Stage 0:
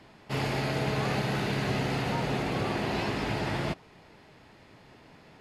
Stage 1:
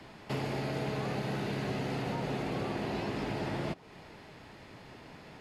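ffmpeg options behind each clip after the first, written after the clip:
ffmpeg -i in.wav -filter_complex "[0:a]acrossover=split=140|740[link_01][link_02][link_03];[link_01]acompressor=threshold=-50dB:ratio=4[link_04];[link_02]acompressor=threshold=-38dB:ratio=4[link_05];[link_03]acompressor=threshold=-47dB:ratio=4[link_06];[link_04][link_05][link_06]amix=inputs=3:normalize=0,volume=3.5dB" out.wav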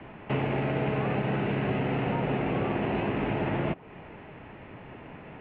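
ffmpeg -i in.wav -af "adynamicsmooth=sensitivity=2:basefreq=1800,highshelf=frequency=3800:width_type=q:width=3:gain=-11,volume=6.5dB" out.wav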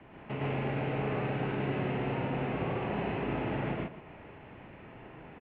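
ffmpeg -i in.wav -af "aecho=1:1:110.8|145.8|268.2:1|1|0.282,volume=-9dB" out.wav

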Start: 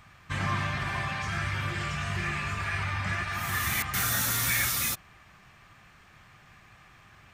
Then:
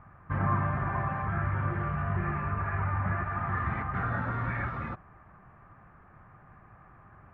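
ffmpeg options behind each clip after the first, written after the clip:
ffmpeg -i in.wav -af "lowpass=frequency=1400:width=0.5412,lowpass=frequency=1400:width=1.3066,volume=3dB" out.wav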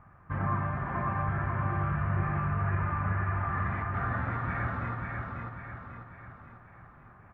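ffmpeg -i in.wav -af "aecho=1:1:543|1086|1629|2172|2715|3258:0.708|0.34|0.163|0.0783|0.0376|0.018,volume=-2.5dB" out.wav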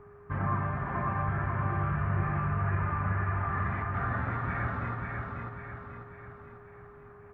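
ffmpeg -i in.wav -af "aeval=exprs='val(0)+0.00282*sin(2*PI*410*n/s)':channel_layout=same" out.wav

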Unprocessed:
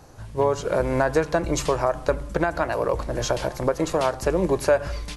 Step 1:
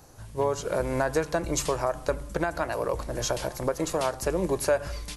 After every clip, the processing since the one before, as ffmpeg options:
ffmpeg -i in.wav -af "highshelf=frequency=7000:gain=12,volume=-5dB" out.wav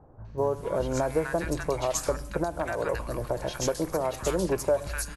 ffmpeg -i in.wav -filter_complex "[0:a]acrossover=split=1200|4000[link_01][link_02][link_03];[link_02]adelay=250[link_04];[link_03]adelay=380[link_05];[link_01][link_04][link_05]amix=inputs=3:normalize=0" out.wav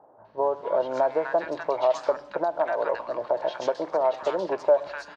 ffmpeg -i in.wav -af "highpass=380,equalizer=frequency=630:width_type=q:width=4:gain=8,equalizer=frequency=910:width_type=q:width=4:gain=7,equalizer=frequency=2400:width_type=q:width=4:gain=-4,lowpass=frequency=4200:width=0.5412,lowpass=frequency=4200:width=1.3066" out.wav

